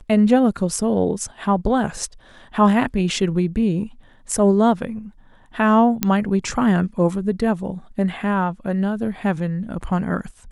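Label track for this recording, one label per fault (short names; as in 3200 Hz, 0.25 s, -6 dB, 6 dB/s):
6.030000	6.030000	pop -4 dBFS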